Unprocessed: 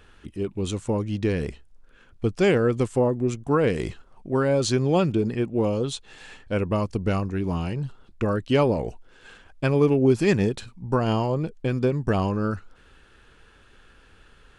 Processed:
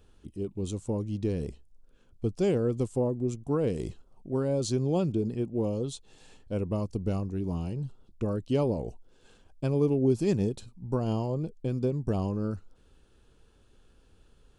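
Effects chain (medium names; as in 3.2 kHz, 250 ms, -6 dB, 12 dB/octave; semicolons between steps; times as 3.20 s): peaking EQ 1.8 kHz -15 dB 1.7 oct; trim -4.5 dB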